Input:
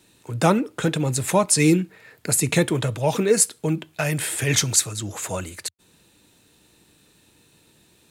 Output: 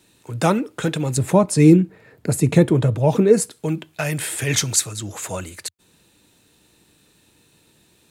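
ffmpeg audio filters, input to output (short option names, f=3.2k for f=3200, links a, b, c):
-filter_complex "[0:a]asettb=1/sr,asplit=3[a][b][c];[a]atrim=end=1.174[d];[b]atrim=start=1.17:end=3.51,asetpts=PTS-STARTPTS,afade=t=in:d=0.004:c=qsin,afade=t=out:st=2.336:d=0.004:c=qsin,tiltshelf=f=970:g=7.5[e];[c]atrim=start=3.506[f];[d][e]acrossfade=d=0.004:c1=hsin:c2=qsin[g];[g][f]acrossfade=d=0.004:c1=qsin:c2=hsin"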